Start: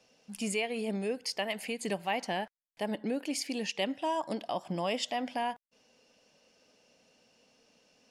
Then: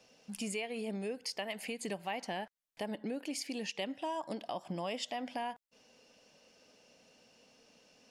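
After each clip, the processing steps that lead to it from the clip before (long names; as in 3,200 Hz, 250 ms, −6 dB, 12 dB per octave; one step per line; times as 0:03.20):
downward compressor 2 to 1, threshold −43 dBFS, peak gain reduction 9 dB
level +2 dB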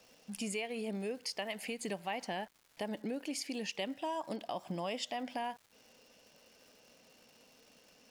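surface crackle 460 per second −53 dBFS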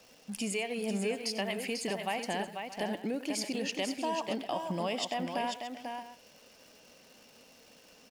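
multi-tap delay 92/492/627 ms −14.5/−6/−16 dB
level +4 dB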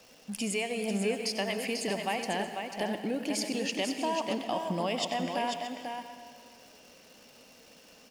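convolution reverb RT60 2.2 s, pre-delay 86 ms, DRR 10 dB
level +2 dB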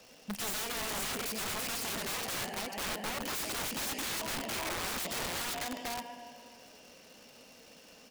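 wrap-around overflow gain 31 dB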